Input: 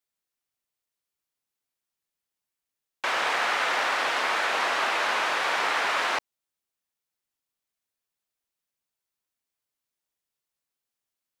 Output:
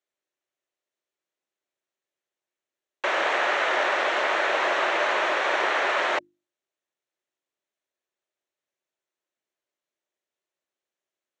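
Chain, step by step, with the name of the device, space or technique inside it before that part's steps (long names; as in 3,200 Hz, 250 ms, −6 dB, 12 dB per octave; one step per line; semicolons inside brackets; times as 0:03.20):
mains-hum notches 50/100/150/200/250/300/350 Hz
full-range speaker at full volume (highs frequency-modulated by the lows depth 0.14 ms; loudspeaker in its box 160–7,000 Hz, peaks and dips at 190 Hz −4 dB, 360 Hz +10 dB, 590 Hz +9 dB, 1,800 Hz +3 dB, 4,900 Hz −9 dB)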